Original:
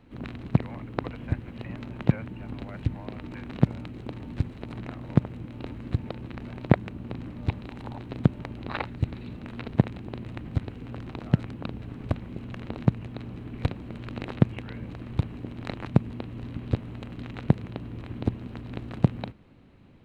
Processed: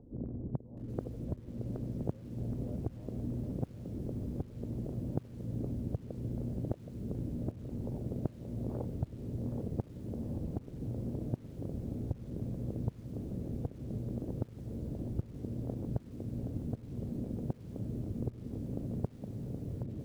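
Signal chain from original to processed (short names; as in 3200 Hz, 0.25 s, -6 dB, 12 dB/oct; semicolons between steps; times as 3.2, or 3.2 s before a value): on a send: diffused feedback echo 1.662 s, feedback 59%, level -11 dB; on the sum: upward compressor, threshold -53 dBFS; Chebyshev low-pass 530 Hz, order 3; compressor 16:1, threshold -33 dBFS, peak gain reduction 22.5 dB; lo-fi delay 0.772 s, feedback 55%, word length 10-bit, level -7 dB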